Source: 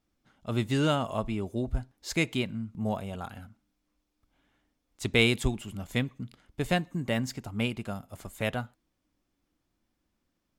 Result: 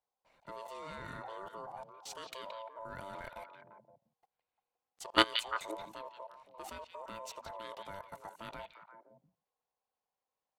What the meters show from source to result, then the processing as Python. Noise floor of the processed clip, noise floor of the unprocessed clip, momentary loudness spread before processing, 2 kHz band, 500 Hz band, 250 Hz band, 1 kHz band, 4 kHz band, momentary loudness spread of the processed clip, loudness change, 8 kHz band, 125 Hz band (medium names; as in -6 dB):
under -85 dBFS, -80 dBFS, 15 LU, -8.5 dB, -10.5 dB, -16.5 dB, -1.5 dB, -3.0 dB, 19 LU, -9.0 dB, -9.0 dB, -25.5 dB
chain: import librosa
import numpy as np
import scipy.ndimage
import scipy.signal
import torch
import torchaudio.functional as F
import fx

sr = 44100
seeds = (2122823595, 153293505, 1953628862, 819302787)

y = x * np.sin(2.0 * np.pi * 780.0 * np.arange(len(x)) / sr)
y = fx.level_steps(y, sr, step_db=24)
y = fx.echo_stepped(y, sr, ms=173, hz=3100.0, octaves=-1.4, feedback_pct=70, wet_db=-4.0)
y = F.gain(torch.from_numpy(y), 2.5).numpy()